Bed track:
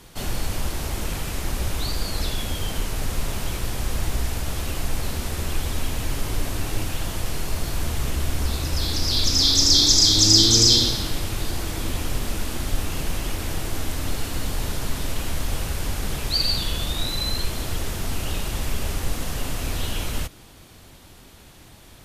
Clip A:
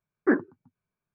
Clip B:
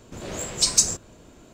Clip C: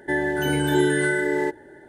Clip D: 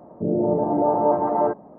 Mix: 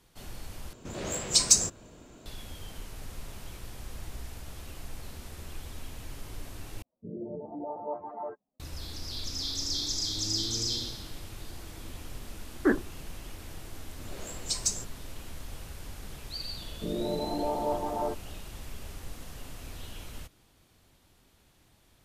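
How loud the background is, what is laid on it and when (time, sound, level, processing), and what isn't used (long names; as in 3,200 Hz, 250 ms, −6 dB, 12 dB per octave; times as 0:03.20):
bed track −16 dB
0:00.73: overwrite with B −2 dB
0:06.82: overwrite with D −14 dB + spectral dynamics exaggerated over time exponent 2
0:12.38: mix in A −2.5 dB
0:13.88: mix in B −11 dB
0:16.61: mix in D −11 dB
not used: C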